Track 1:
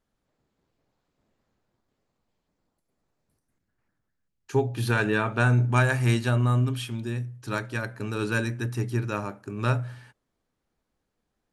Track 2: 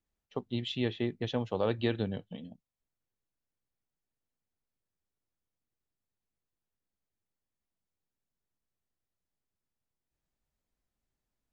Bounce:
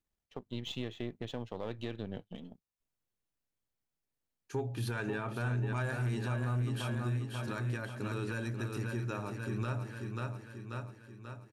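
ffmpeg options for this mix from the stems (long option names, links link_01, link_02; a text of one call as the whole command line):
ffmpeg -i stem1.wav -i stem2.wav -filter_complex "[0:a]agate=range=-33dB:threshold=-40dB:ratio=3:detection=peak,adynamicequalizer=threshold=0.0112:dfrequency=1500:dqfactor=0.7:tfrequency=1500:tqfactor=0.7:attack=5:release=100:ratio=0.375:range=2:mode=cutabove:tftype=highshelf,volume=-4dB,asplit=2[link_01][link_02];[link_02]volume=-7dB[link_03];[1:a]aeval=exprs='if(lt(val(0),0),0.447*val(0),val(0))':channel_layout=same,volume=0dB[link_04];[link_03]aecho=0:1:537|1074|1611|2148|2685|3222|3759|4296:1|0.53|0.281|0.149|0.0789|0.0418|0.0222|0.0117[link_05];[link_01][link_04][link_05]amix=inputs=3:normalize=0,asoftclip=type=tanh:threshold=-16.5dB,alimiter=level_in=3dB:limit=-24dB:level=0:latency=1:release=203,volume=-3dB" out.wav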